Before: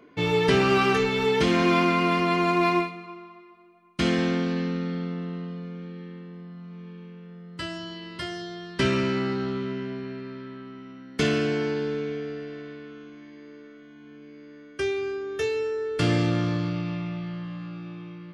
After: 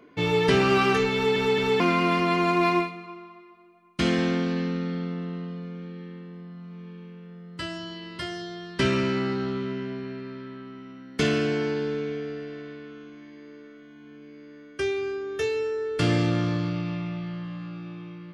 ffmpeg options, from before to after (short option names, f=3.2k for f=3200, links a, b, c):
-filter_complex "[0:a]asplit=4[a][b][c][d];[a]atrim=end=1.362[e];[b]atrim=start=1.138:end=1.362[f];[c]atrim=start=1.138:end=1.362[g];[d]atrim=start=1.798[h];[e][f]acrossfade=d=0.004:c1=hsin:c2=hsin[i];[i][g]acrossfade=d=0.004:c1=hsin:c2=hsin[j];[j][h]acrossfade=d=0.004:c1=hsin:c2=hsin"